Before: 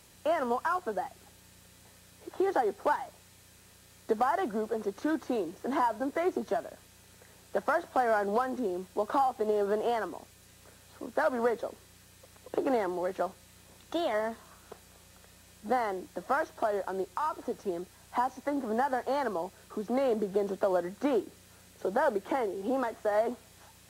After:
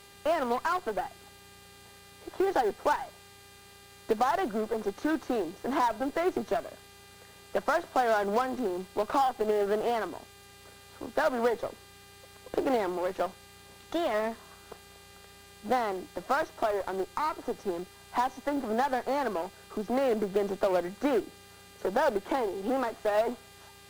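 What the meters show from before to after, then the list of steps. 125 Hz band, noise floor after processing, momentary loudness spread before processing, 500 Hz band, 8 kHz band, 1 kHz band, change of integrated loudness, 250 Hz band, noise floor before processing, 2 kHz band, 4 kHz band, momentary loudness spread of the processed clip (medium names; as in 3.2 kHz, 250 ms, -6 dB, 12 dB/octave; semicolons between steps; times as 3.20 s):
+1.5 dB, -53 dBFS, 9 LU, +1.0 dB, +3.0 dB, +1.0 dB, +1.0 dB, +1.0 dB, -58 dBFS, +1.5 dB, +5.0 dB, 12 LU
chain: mains buzz 400 Hz, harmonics 12, -57 dBFS -2 dB/octave; Chebyshev shaper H 8 -24 dB, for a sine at -17.5 dBFS; short-mantissa float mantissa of 4-bit; trim +1 dB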